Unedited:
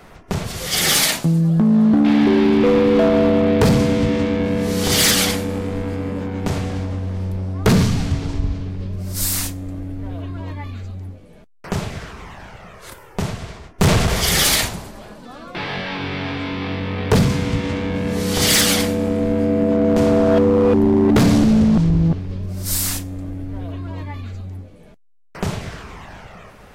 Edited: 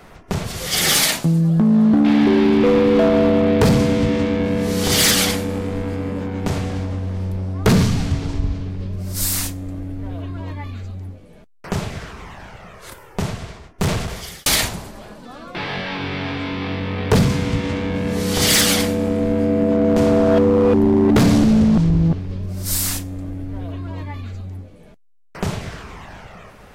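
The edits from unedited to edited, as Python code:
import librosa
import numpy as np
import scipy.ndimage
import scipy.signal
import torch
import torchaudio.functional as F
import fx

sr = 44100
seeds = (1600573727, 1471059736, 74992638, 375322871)

y = fx.edit(x, sr, fx.fade_out_span(start_s=13.37, length_s=1.09), tone=tone)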